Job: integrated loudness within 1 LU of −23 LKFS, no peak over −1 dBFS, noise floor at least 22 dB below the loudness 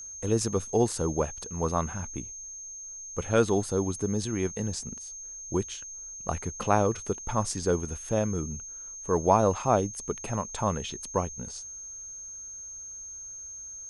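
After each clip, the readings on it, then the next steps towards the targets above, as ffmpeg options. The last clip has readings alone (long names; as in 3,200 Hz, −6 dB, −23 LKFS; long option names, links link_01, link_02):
interfering tone 6,400 Hz; level of the tone −39 dBFS; integrated loudness −30.0 LKFS; sample peak −7.5 dBFS; target loudness −23.0 LKFS
→ -af "bandreject=frequency=6400:width=30"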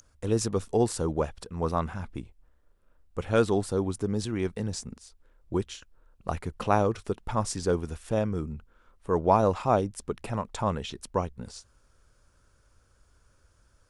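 interfering tone none found; integrated loudness −29.0 LKFS; sample peak −7.5 dBFS; target loudness −23.0 LKFS
→ -af "volume=6dB"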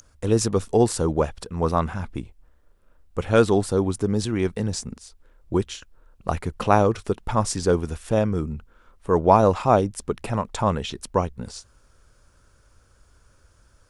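integrated loudness −23.0 LKFS; sample peak −1.5 dBFS; background noise floor −59 dBFS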